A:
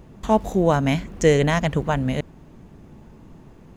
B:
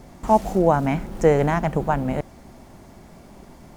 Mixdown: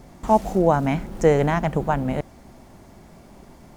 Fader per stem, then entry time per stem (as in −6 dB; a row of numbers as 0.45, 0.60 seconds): −17.0, −1.5 decibels; 0.00, 0.00 seconds